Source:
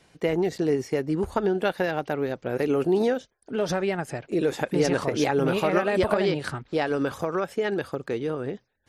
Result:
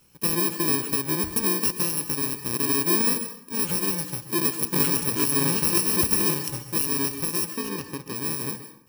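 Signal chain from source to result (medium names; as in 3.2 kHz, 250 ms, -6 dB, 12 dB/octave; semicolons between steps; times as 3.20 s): bit-reversed sample order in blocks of 64 samples; 7.55–8.16 s: treble shelf 5.8 kHz -11 dB; plate-style reverb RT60 0.62 s, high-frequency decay 0.75×, pre-delay 115 ms, DRR 9.5 dB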